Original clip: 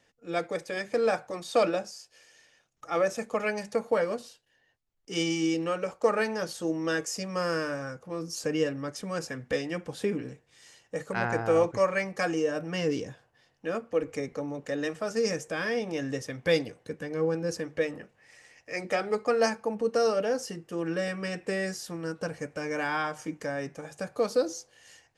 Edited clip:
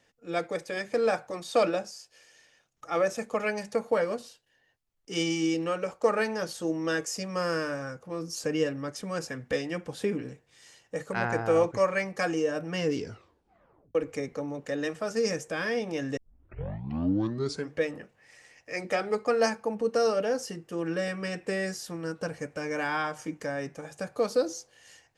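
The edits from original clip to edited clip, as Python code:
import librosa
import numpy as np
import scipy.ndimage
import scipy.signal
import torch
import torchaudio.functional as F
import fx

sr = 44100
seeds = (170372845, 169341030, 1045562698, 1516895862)

y = fx.edit(x, sr, fx.tape_stop(start_s=12.95, length_s=1.0),
    fx.tape_start(start_s=16.17, length_s=1.59), tone=tone)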